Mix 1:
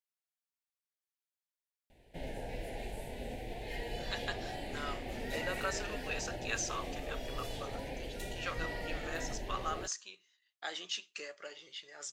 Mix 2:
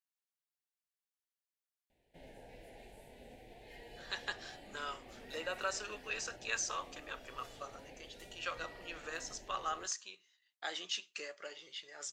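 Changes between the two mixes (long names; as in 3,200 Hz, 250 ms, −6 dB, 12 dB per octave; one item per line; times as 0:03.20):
background −11.5 dB
master: add low-shelf EQ 120 Hz −6.5 dB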